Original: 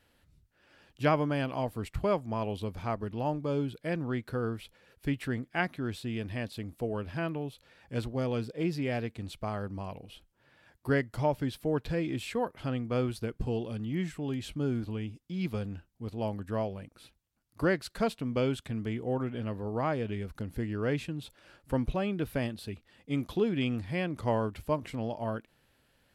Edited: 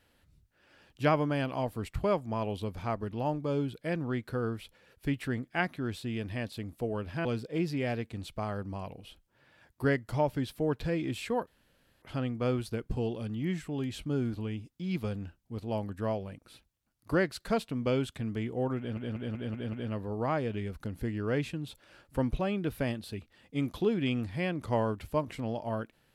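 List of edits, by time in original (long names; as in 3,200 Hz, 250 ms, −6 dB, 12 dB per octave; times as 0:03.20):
0:07.25–0:08.30: remove
0:12.52: splice in room tone 0.55 s
0:19.28: stutter 0.19 s, 6 plays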